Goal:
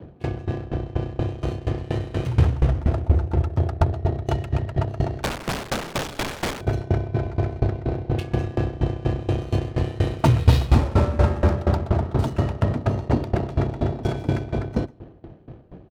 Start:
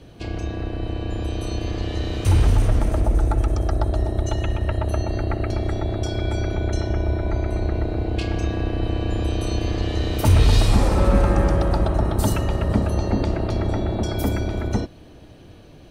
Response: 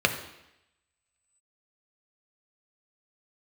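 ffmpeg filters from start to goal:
-filter_complex "[0:a]asplit=2[s0][s1];[s1]acompressor=threshold=0.0447:ratio=5,volume=1[s2];[s0][s2]amix=inputs=2:normalize=0,afreqshift=29,asettb=1/sr,asplit=3[s3][s4][s5];[s3]atrim=end=5.234[s6];[s4]atrim=start=5.23:end=6.61,asetpts=PTS-STARTPTS,afade=t=in:d=0.004:c=qsin,afade=t=out:st=1.376:d=0.004:c=qsin,aeval=exprs='(mod(8.41*val(0)+1,2)-1)/8.41':c=same[s7];[s5]atrim=start=6.606[s8];[s6][s7]acrossfade=d=0.004:c1=hsin:c2=qsin[s9];[s9][s8]acrossfade=d=0.004:c1=qsin:c2=hsin,adynamicsmooth=sensitivity=4:basefreq=720,aecho=1:1:143:0.1,aeval=exprs='val(0)*pow(10,-20*if(lt(mod(4.2*n/s,1),2*abs(4.2)/1000),1-mod(4.2*n/s,1)/(2*abs(4.2)/1000),(mod(4.2*n/s,1)-2*abs(4.2)/1000)/(1-2*abs(4.2)/1000))/20)':c=same,volume=1.26"

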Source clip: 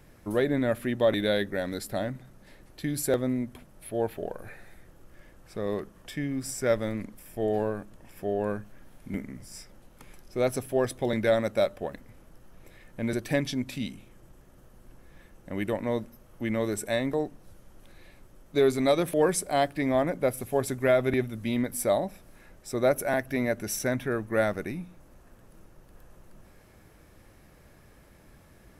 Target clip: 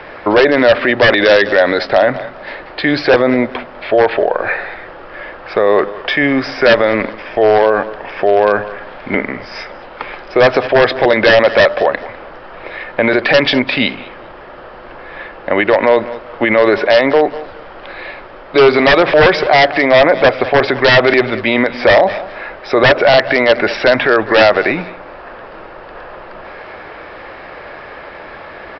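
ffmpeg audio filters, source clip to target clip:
-filter_complex "[0:a]acrossover=split=440 2800:gain=0.0708 1 0.2[s0][s1][s2];[s0][s1][s2]amix=inputs=3:normalize=0,aresample=11025,aeval=exprs='0.0562*(abs(mod(val(0)/0.0562+3,4)-2)-1)':c=same,aresample=44100,aecho=1:1:200|400:0.0668|0.0154,alimiter=level_in=42.2:limit=0.891:release=50:level=0:latency=1,volume=0.891"

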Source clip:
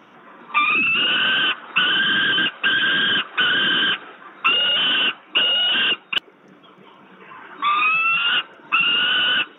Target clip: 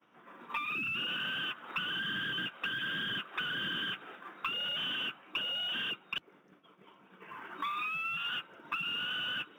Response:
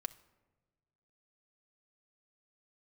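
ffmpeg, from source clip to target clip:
-filter_complex "[0:a]agate=range=0.0224:threshold=0.01:ratio=3:detection=peak,acrossover=split=170[s0][s1];[s1]acompressor=threshold=0.0398:ratio=6[s2];[s0][s2]amix=inputs=2:normalize=0,acrusher=bits=8:mode=log:mix=0:aa=0.000001,aeval=exprs='0.178*(cos(1*acos(clip(val(0)/0.178,-1,1)))-cos(1*PI/2))+0.00631*(cos(2*acos(clip(val(0)/0.178,-1,1)))-cos(2*PI/2))+0.00158*(cos(6*acos(clip(val(0)/0.178,-1,1)))-cos(6*PI/2))+0.00126*(cos(8*acos(clip(val(0)/0.178,-1,1)))-cos(8*PI/2))':c=same,volume=0.473"

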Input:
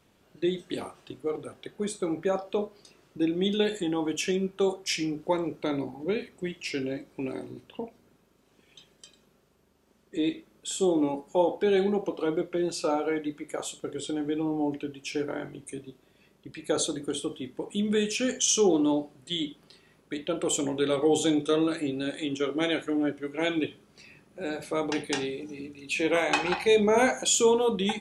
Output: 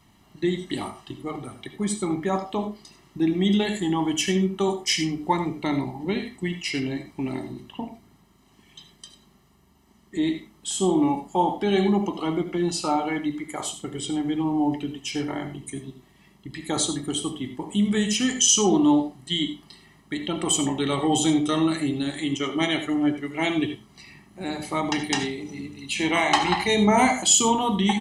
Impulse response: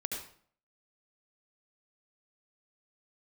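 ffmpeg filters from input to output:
-filter_complex "[0:a]aecho=1:1:1:0.81,asplit=2[s0][s1];[1:a]atrim=start_sample=2205,afade=t=out:st=0.15:d=0.01,atrim=end_sample=7056[s2];[s1][s2]afir=irnorm=-1:irlink=0,volume=0.668[s3];[s0][s3]amix=inputs=2:normalize=0"

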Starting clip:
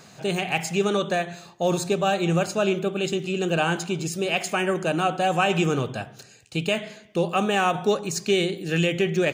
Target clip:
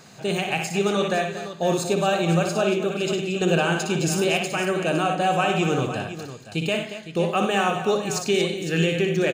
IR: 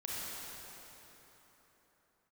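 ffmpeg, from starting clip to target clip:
-filter_complex "[0:a]asettb=1/sr,asplit=3[s0][s1][s2];[s0]atrim=end=3.414[s3];[s1]atrim=start=3.41:end=4.4,asetpts=PTS-STARTPTS,afade=t=in:d=0.004:c=qsin,afade=t=out:st=0.986:d=0.004:c=qsin,acontrast=21[s4];[s2]atrim=start=4.396[s5];[s3][s4]acrossfade=d=0.004:c1=hsin:c2=qsin[s6];[s6][s5]acrossfade=d=0.004:c1=qsin:c2=hsin,alimiter=limit=0.266:level=0:latency=1:release=442,asplit=2[s7][s8];[s8]aecho=0:1:60|99|231|510:0.473|0.251|0.266|0.251[s9];[s7][s9]amix=inputs=2:normalize=0"

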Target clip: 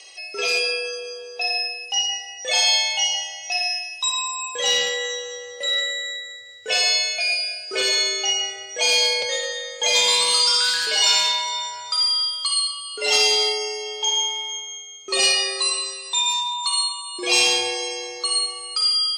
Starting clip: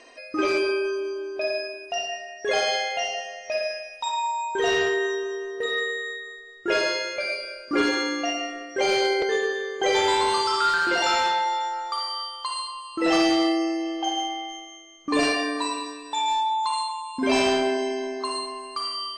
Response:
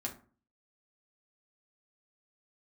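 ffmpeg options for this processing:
-af "afreqshift=96,aexciter=amount=7.2:drive=3.9:freq=2300,volume=0.531"

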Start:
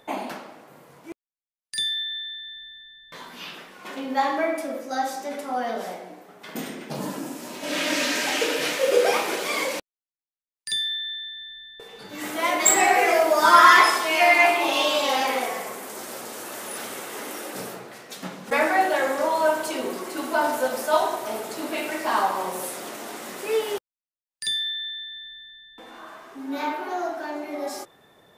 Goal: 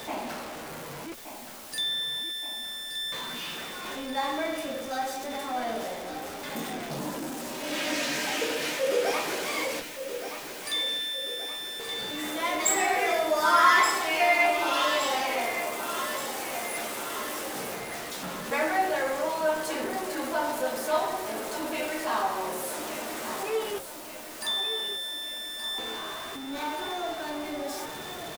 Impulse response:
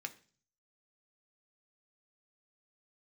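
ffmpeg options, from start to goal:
-filter_complex "[0:a]aeval=exprs='val(0)+0.5*0.0447*sgn(val(0))':c=same,asplit=2[s0][s1];[s1]adelay=13,volume=0.299[s2];[s0][s2]amix=inputs=2:normalize=0,asplit=2[s3][s4];[s4]aecho=0:1:1174|2348|3522|4696|5870|7044:0.316|0.168|0.0888|0.0471|0.025|0.0132[s5];[s3][s5]amix=inputs=2:normalize=0,volume=0.398"

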